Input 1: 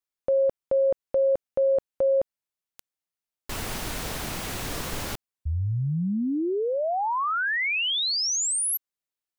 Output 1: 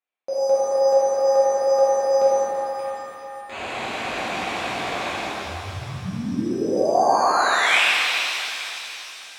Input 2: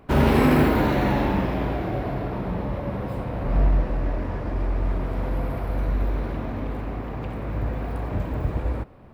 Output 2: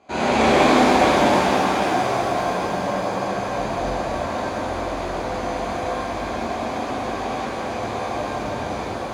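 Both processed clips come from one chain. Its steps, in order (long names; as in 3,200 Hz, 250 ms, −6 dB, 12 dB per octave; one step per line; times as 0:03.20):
low-shelf EQ 230 Hz −8 dB
reversed playback
upward compression, threshold −26 dBFS
reversed playback
bad sample-rate conversion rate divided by 8×, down filtered, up hold
loudspeaker in its box 110–7,200 Hz, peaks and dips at 150 Hz −9 dB, 730 Hz +7 dB, 2,500 Hz +9 dB, 5,400 Hz −8 dB
reverb with rising layers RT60 3.2 s, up +7 semitones, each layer −8 dB, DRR −11 dB
level −6 dB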